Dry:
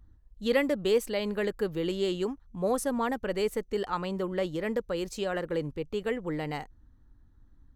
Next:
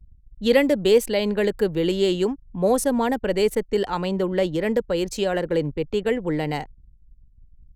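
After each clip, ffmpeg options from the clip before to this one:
-filter_complex "[0:a]anlmdn=0.01,equalizer=f=1.2k:w=7:g=-9,acrossover=split=120|1300|1700[a][b][c][d];[c]acompressor=threshold=-57dB:ratio=6[e];[a][b][e][d]amix=inputs=4:normalize=0,volume=8.5dB"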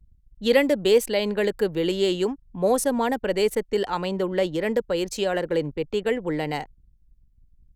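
-af "lowshelf=f=230:g=-6.5"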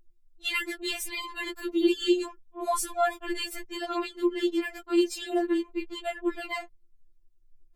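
-af "afftfilt=real='re*4*eq(mod(b,16),0)':imag='im*4*eq(mod(b,16),0)':win_size=2048:overlap=0.75"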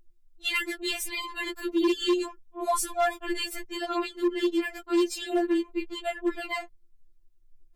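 -af "asoftclip=type=hard:threshold=-20.5dB,volume=1.5dB"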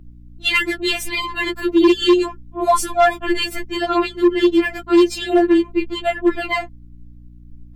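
-filter_complex "[0:a]aeval=exprs='val(0)+0.00224*(sin(2*PI*60*n/s)+sin(2*PI*2*60*n/s)/2+sin(2*PI*3*60*n/s)/3+sin(2*PI*4*60*n/s)/4+sin(2*PI*5*60*n/s)/5)':c=same,asplit=2[a][b];[b]adynamicsmooth=sensitivity=2.5:basefreq=5k,volume=2dB[c];[a][c]amix=inputs=2:normalize=0,volume=4.5dB"

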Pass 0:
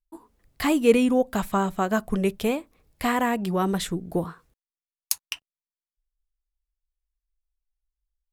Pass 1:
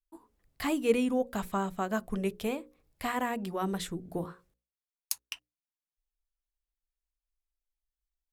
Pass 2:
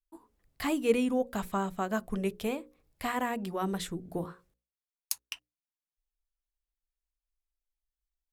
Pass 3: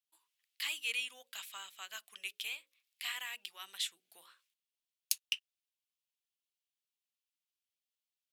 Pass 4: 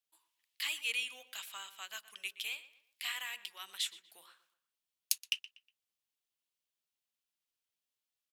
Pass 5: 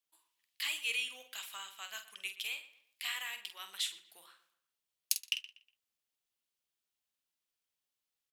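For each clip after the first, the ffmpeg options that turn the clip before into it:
-af "bandreject=f=60:t=h:w=6,bandreject=f=120:t=h:w=6,bandreject=f=180:t=h:w=6,bandreject=f=240:t=h:w=6,bandreject=f=300:t=h:w=6,bandreject=f=360:t=h:w=6,bandreject=f=420:t=h:w=6,bandreject=f=480:t=h:w=6,bandreject=f=540:t=h:w=6,volume=-7.5dB"
-af anull
-af "highpass=f=2.9k:t=q:w=2.3,volume=-1dB"
-filter_complex "[0:a]asplit=2[a][b];[b]adelay=121,lowpass=f=3.3k:p=1,volume=-15dB,asplit=2[c][d];[d]adelay=121,lowpass=f=3.3k:p=1,volume=0.37,asplit=2[e][f];[f]adelay=121,lowpass=f=3.3k:p=1,volume=0.37[g];[a][c][e][g]amix=inputs=4:normalize=0,volume=1dB"
-filter_complex "[0:a]asplit=2[a][b];[b]adelay=47,volume=-9dB[c];[a][c]amix=inputs=2:normalize=0"

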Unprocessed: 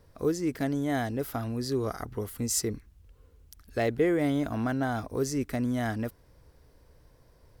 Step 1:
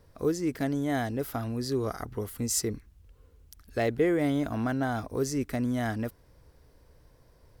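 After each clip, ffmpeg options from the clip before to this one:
-af anull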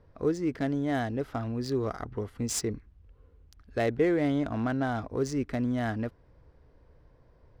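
-af "adynamicsmooth=sensitivity=7:basefreq=2.8k"

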